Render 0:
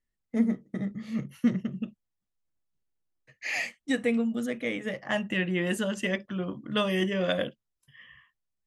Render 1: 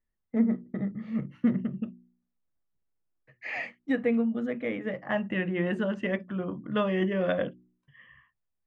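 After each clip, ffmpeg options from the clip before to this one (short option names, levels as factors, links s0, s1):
-af "lowpass=1800,bandreject=f=60.5:t=h:w=4,bandreject=f=121:t=h:w=4,bandreject=f=181.5:t=h:w=4,bandreject=f=242:t=h:w=4,bandreject=f=302.5:t=h:w=4,bandreject=f=363:t=h:w=4,volume=1.12"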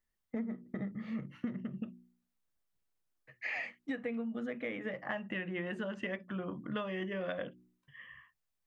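-af "tiltshelf=f=700:g=-3.5,acompressor=threshold=0.0178:ratio=6"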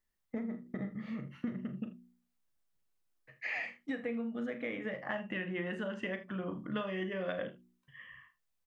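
-af "aecho=1:1:38|51|79:0.282|0.15|0.158"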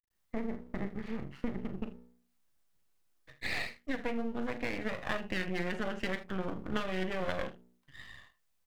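-af "aeval=exprs='max(val(0),0)':c=same,volume=2"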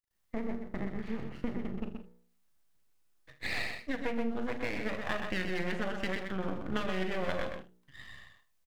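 -af "aecho=1:1:126:0.501"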